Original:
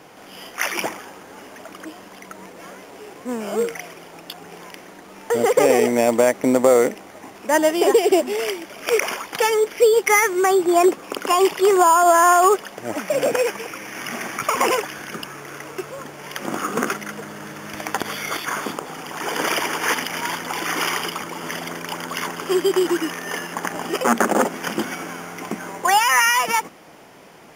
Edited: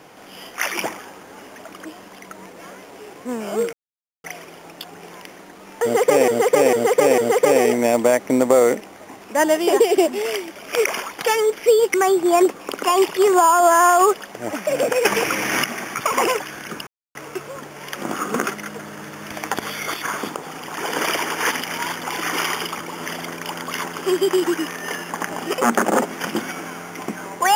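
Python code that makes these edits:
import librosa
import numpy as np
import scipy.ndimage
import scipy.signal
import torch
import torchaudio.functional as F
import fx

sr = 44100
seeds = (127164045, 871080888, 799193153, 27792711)

y = fx.edit(x, sr, fx.insert_silence(at_s=3.73, length_s=0.51),
    fx.repeat(start_s=5.32, length_s=0.45, count=4),
    fx.cut(start_s=10.08, length_s=0.29),
    fx.clip_gain(start_s=13.48, length_s=0.59, db=11.5),
    fx.silence(start_s=15.3, length_s=0.28), tone=tone)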